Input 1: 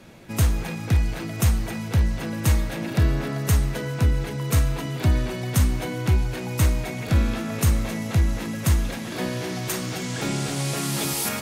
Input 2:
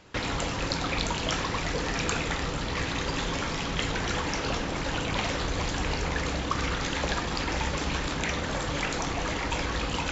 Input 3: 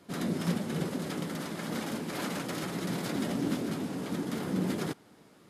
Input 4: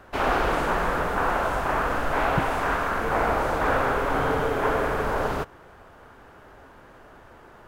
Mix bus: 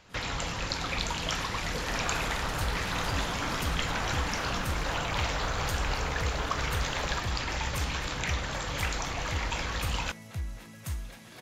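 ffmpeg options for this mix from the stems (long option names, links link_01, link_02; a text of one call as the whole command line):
ffmpeg -i stem1.wav -i stem2.wav -i stem3.wav -i stem4.wav -filter_complex "[0:a]adelay=2200,volume=-14dB[link_01];[1:a]volume=-1.5dB[link_02];[2:a]dynaudnorm=framelen=110:gausssize=17:maxgain=10.5dB,volume=-13.5dB[link_03];[3:a]adelay=1750,volume=-11dB[link_04];[link_01][link_02][link_03][link_04]amix=inputs=4:normalize=0,equalizer=frequency=290:width_type=o:width=1.9:gain=-8" out.wav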